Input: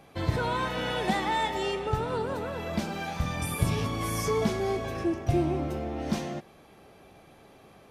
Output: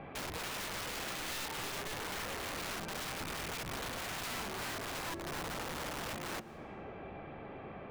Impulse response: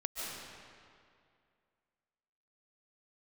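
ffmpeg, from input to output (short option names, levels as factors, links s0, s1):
-filter_complex "[0:a]lowpass=f=2500:w=0.5412,lowpass=f=2500:w=1.3066,bandreject=f=56.76:t=h:w=4,bandreject=f=113.52:t=h:w=4,bandreject=f=170.28:t=h:w=4,bandreject=f=227.04:t=h:w=4,bandreject=f=283.8:t=h:w=4,bandreject=f=340.56:t=h:w=4,bandreject=f=397.32:t=h:w=4,bandreject=f=454.08:t=h:w=4,bandreject=f=510.84:t=h:w=4,bandreject=f=567.6:t=h:w=4,bandreject=f=624.36:t=h:w=4,bandreject=f=681.12:t=h:w=4,bandreject=f=737.88:t=h:w=4,bandreject=f=794.64:t=h:w=4,bandreject=f=851.4:t=h:w=4,bandreject=f=908.16:t=h:w=4,bandreject=f=964.92:t=h:w=4,bandreject=f=1021.68:t=h:w=4,bandreject=f=1078.44:t=h:w=4,bandreject=f=1135.2:t=h:w=4,bandreject=f=1191.96:t=h:w=4,bandreject=f=1248.72:t=h:w=4,bandreject=f=1305.48:t=h:w=4,bandreject=f=1362.24:t=h:w=4,bandreject=f=1419:t=h:w=4,bandreject=f=1475.76:t=h:w=4,bandreject=f=1532.52:t=h:w=4,bandreject=f=1589.28:t=h:w=4,bandreject=f=1646.04:t=h:w=4,bandreject=f=1702.8:t=h:w=4,bandreject=f=1759.56:t=h:w=4,bandreject=f=1816.32:t=h:w=4,acompressor=threshold=0.00708:ratio=8,aeval=exprs='(mod(141*val(0)+1,2)-1)/141':c=same,asplit=2[s0][s1];[1:a]atrim=start_sample=2205[s2];[s1][s2]afir=irnorm=-1:irlink=0,volume=0.106[s3];[s0][s3]amix=inputs=2:normalize=0,volume=2.24"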